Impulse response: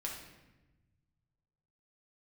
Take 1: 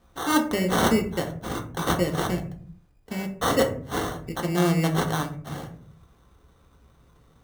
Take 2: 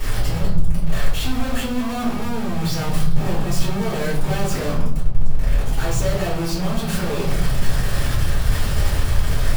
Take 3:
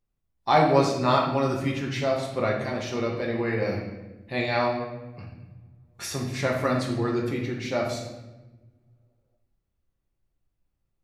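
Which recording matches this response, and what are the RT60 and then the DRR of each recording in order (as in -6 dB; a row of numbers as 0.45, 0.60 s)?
3; 0.45, 0.75, 1.1 s; 2.5, -11.0, -2.5 dB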